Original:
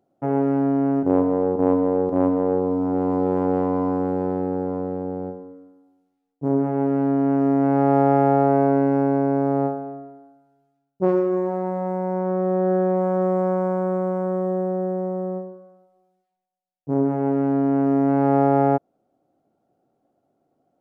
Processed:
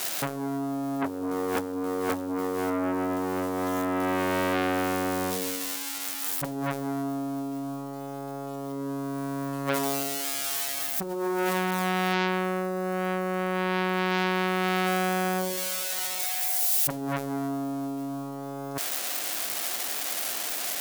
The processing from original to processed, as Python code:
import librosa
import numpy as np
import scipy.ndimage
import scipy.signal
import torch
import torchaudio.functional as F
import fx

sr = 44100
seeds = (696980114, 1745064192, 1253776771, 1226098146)

y = x + 0.5 * 10.0 ** (-20.5 / 20.0) * np.diff(np.sign(x), prepend=np.sign(x[:1]))
y = fx.over_compress(y, sr, threshold_db=-24.0, ratio=-0.5)
y = fx.transformer_sat(y, sr, knee_hz=1900.0)
y = F.gain(torch.from_numpy(y), 2.0).numpy()